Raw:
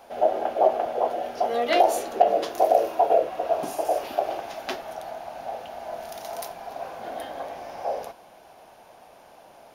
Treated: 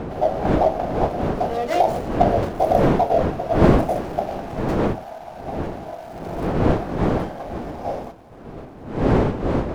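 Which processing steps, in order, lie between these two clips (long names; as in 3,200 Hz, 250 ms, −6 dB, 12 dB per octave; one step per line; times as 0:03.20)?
running median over 15 samples
wind on the microphone 440 Hz −24 dBFS
level +1 dB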